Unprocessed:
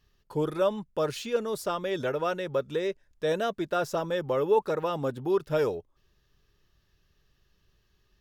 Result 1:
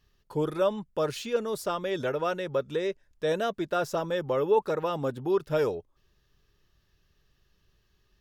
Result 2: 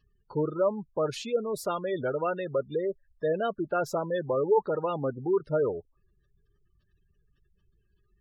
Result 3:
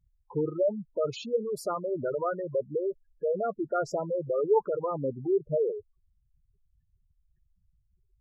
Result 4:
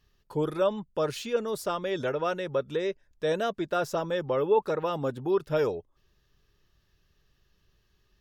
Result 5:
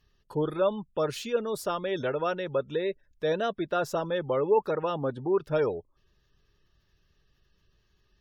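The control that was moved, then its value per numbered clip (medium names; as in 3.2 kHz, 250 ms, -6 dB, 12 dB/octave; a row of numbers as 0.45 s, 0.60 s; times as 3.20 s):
spectral gate, under each frame's peak: -60 dB, -20 dB, -10 dB, -50 dB, -35 dB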